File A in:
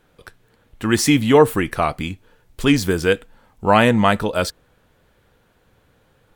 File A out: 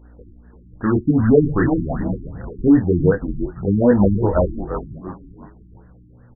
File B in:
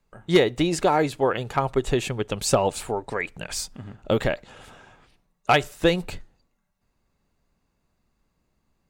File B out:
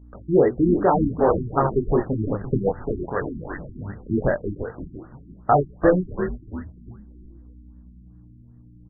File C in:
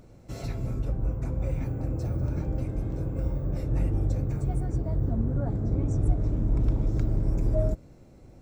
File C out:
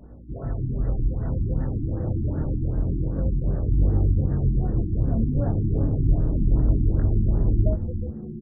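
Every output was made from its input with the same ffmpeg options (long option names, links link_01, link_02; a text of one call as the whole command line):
ffmpeg -i in.wav -filter_complex "[0:a]asplit=2[link_01][link_02];[link_02]asoftclip=type=hard:threshold=-18.5dB,volume=-7dB[link_03];[link_01][link_03]amix=inputs=2:normalize=0,aeval=exprs='val(0)+0.00562*(sin(2*PI*60*n/s)+sin(2*PI*2*60*n/s)/2+sin(2*PI*3*60*n/s)/3+sin(2*PI*4*60*n/s)/4+sin(2*PI*5*60*n/s)/5)':channel_layout=same,flanger=delay=20:depth=8:speed=0.27,asplit=5[link_04][link_05][link_06][link_07][link_08];[link_05]adelay=341,afreqshift=-130,volume=-9dB[link_09];[link_06]adelay=682,afreqshift=-260,volume=-17.2dB[link_10];[link_07]adelay=1023,afreqshift=-390,volume=-25.4dB[link_11];[link_08]adelay=1364,afreqshift=-520,volume=-33.5dB[link_12];[link_04][link_09][link_10][link_11][link_12]amix=inputs=5:normalize=0,afftfilt=real='re*lt(b*sr/1024,360*pow(2000/360,0.5+0.5*sin(2*PI*2.6*pts/sr)))':imag='im*lt(b*sr/1024,360*pow(2000/360,0.5+0.5*sin(2*PI*2.6*pts/sr)))':win_size=1024:overlap=0.75,volume=3.5dB" out.wav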